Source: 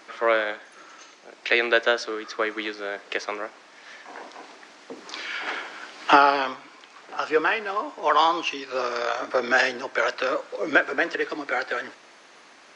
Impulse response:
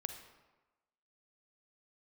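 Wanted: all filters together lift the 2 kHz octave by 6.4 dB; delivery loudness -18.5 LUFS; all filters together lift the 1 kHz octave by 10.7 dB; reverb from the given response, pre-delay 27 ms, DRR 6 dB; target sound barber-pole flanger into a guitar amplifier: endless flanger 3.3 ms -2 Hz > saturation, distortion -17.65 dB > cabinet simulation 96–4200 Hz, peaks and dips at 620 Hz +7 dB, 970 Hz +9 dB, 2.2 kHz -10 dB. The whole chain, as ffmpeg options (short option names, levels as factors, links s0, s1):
-filter_complex "[0:a]equalizer=f=1000:t=o:g=4.5,equalizer=f=2000:t=o:g=9,asplit=2[s0][s1];[1:a]atrim=start_sample=2205,adelay=27[s2];[s1][s2]afir=irnorm=-1:irlink=0,volume=0.562[s3];[s0][s3]amix=inputs=2:normalize=0,asplit=2[s4][s5];[s5]adelay=3.3,afreqshift=-2[s6];[s4][s6]amix=inputs=2:normalize=1,asoftclip=threshold=0.422,highpass=96,equalizer=f=620:t=q:w=4:g=7,equalizer=f=970:t=q:w=4:g=9,equalizer=f=2200:t=q:w=4:g=-10,lowpass=f=4200:w=0.5412,lowpass=f=4200:w=1.3066,volume=1.12"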